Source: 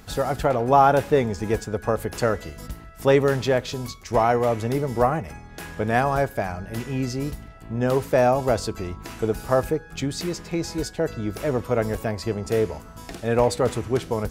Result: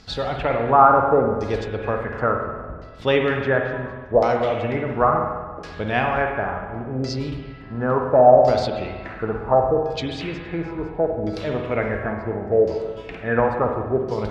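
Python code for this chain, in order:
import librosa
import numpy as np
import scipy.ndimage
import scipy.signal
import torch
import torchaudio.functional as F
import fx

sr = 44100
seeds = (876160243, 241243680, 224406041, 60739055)

y = fx.filter_lfo_lowpass(x, sr, shape='saw_down', hz=0.71, low_hz=510.0, high_hz=5100.0, q=3.6)
y = fx.rev_spring(y, sr, rt60_s=1.4, pass_ms=(47, 60), chirp_ms=70, drr_db=3.0)
y = F.gain(torch.from_numpy(y), -2.5).numpy()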